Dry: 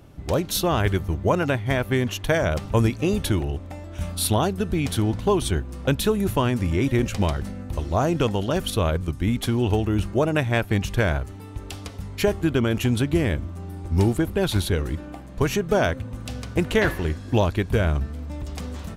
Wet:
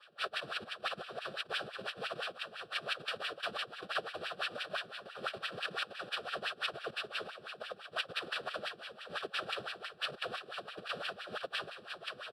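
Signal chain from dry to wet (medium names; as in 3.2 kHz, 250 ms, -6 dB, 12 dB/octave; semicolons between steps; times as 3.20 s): knee-point frequency compression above 2.4 kHz 4:1; three-band isolator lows -20 dB, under 450 Hz, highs -14 dB, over 3.2 kHz; reverse; compression 12:1, threshold -32 dBFS, peak gain reduction 15 dB; reverse; noise-vocoded speech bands 1; static phaser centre 1.4 kHz, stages 8; time stretch by phase-locked vocoder 0.65×; on a send: feedback delay 239 ms, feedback 43%, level -11 dB; on the sum: wah-wah 5.9 Hz 220–2400 Hz, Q 2.7; trim +13.5 dB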